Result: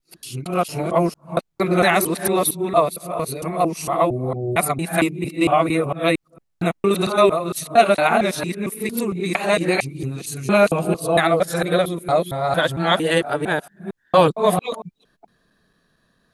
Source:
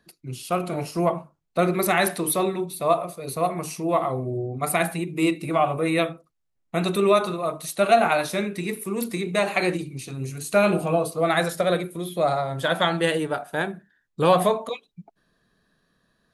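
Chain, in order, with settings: time reversed locally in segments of 228 ms; trim +4 dB

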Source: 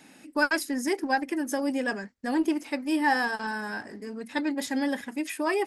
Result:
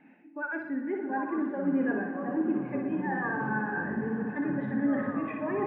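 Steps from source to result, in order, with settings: reverse; compression 12:1, threshold -35 dBFS, peak gain reduction 17 dB; reverse; flutter echo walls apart 10.3 m, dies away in 0.82 s; in parallel at -1 dB: peak limiter -35 dBFS, peak gain reduction 10.5 dB; on the sum: resonant high shelf 3.5 kHz -10 dB, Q 1.5; ever faster or slower copies 581 ms, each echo -6 st, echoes 3, each echo -6 dB; distance through air 310 m; hum notches 50/100/150/200/250/300 Hz; echo with a slow build-up 86 ms, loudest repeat 8, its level -16 dB; spectral contrast expander 1.5:1; trim +2.5 dB

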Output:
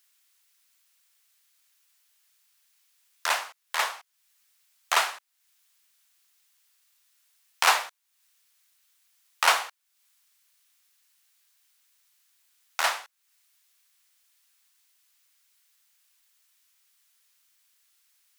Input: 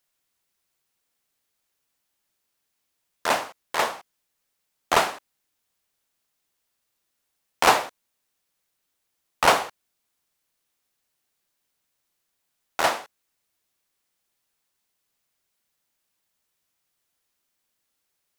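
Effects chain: high-pass 1.1 kHz 12 dB/octave; tape noise reduction on one side only encoder only

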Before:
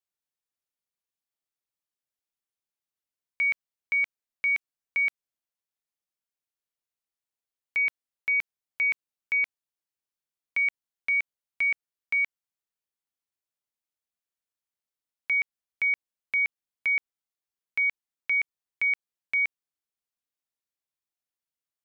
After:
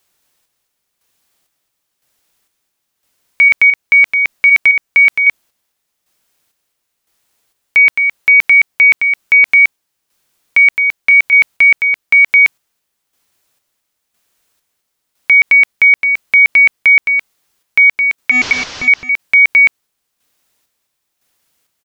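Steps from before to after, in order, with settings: 18.31–18.88 s: one-bit delta coder 32 kbps, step -44.5 dBFS; square tremolo 0.99 Hz, depth 60%, duty 45%; delay 215 ms -8.5 dB; loudness maximiser +30 dB; trim -2 dB

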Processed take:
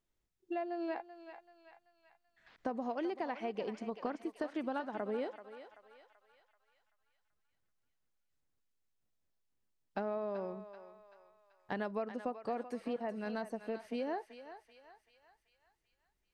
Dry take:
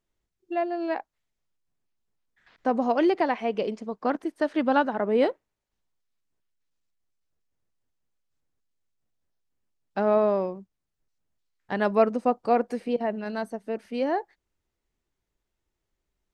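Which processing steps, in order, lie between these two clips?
compression, threshold -31 dBFS, peak gain reduction 16 dB; thinning echo 384 ms, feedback 56%, high-pass 770 Hz, level -9 dB; trim -4 dB

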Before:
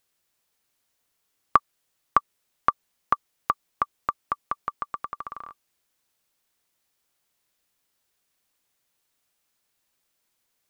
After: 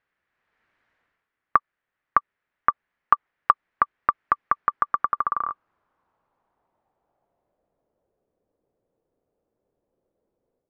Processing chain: low-pass sweep 1.8 kHz -> 490 Hz, 4.51–8.39 s; level rider gain up to 9 dB; 2.69–3.51 s: dynamic bell 860 Hz, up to +4 dB, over -32 dBFS, Q 0.83; trim -1 dB

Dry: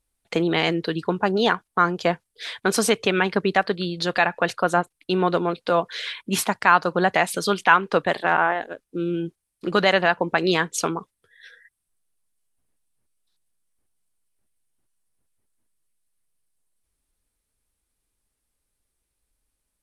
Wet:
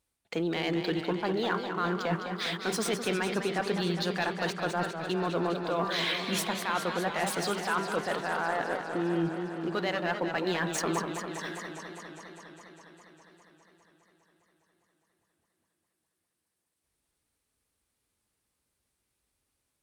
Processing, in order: median filter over 3 samples; high-pass 77 Hz; de-hum 197.3 Hz, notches 8; reverse; compression, threshold -30 dBFS, peak gain reduction 18.5 dB; reverse; waveshaping leveller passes 1; in parallel at -0.5 dB: peak limiter -29.5 dBFS, peak gain reduction 12.5 dB; on the sum: modulated delay 203 ms, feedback 78%, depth 132 cents, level -8 dB; trim -3.5 dB

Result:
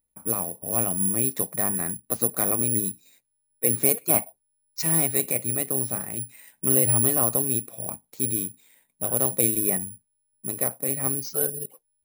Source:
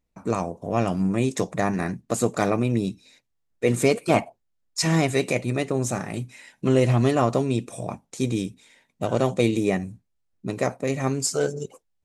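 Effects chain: careless resampling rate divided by 4×, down filtered, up zero stuff; trim -7.5 dB

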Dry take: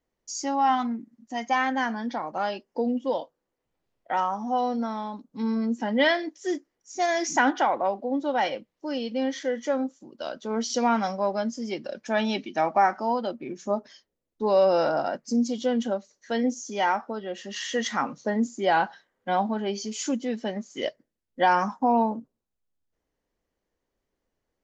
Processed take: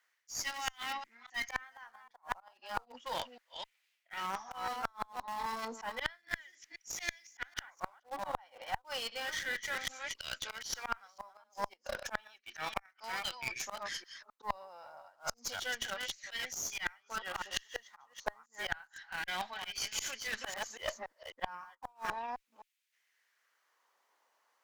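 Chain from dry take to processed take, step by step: chunks repeated in reverse 260 ms, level -8.5 dB; dynamic bell 280 Hz, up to -5 dB, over -43 dBFS, Q 5.3; LFO high-pass sine 0.32 Hz 940–2300 Hz; in parallel at -9.5 dB: bit crusher 6-bit; on the sum: slow attack 143 ms; inverted gate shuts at -19 dBFS, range -39 dB; reverse; compression 6:1, threshold -45 dBFS, peak gain reduction 18 dB; reverse; Chebyshev shaper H 6 -20 dB, 7 -30 dB, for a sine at -25.5 dBFS; trim +10.5 dB

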